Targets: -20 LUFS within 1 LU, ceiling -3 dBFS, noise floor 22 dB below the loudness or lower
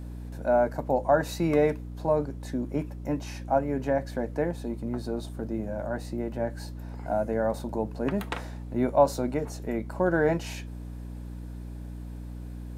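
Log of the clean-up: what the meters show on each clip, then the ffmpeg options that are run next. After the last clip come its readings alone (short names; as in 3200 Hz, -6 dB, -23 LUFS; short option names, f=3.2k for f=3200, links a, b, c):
hum 60 Hz; harmonics up to 300 Hz; hum level -36 dBFS; loudness -28.5 LUFS; peak -8.5 dBFS; loudness target -20.0 LUFS
-> -af "bandreject=f=60:t=h:w=4,bandreject=f=120:t=h:w=4,bandreject=f=180:t=h:w=4,bandreject=f=240:t=h:w=4,bandreject=f=300:t=h:w=4"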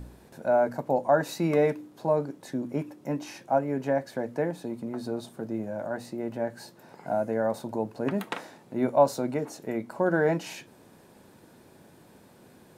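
hum none; loudness -29.0 LUFS; peak -8.5 dBFS; loudness target -20.0 LUFS
-> -af "volume=9dB,alimiter=limit=-3dB:level=0:latency=1"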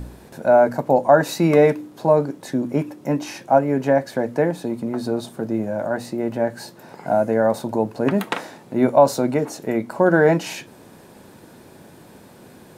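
loudness -20.0 LUFS; peak -3.0 dBFS; noise floor -46 dBFS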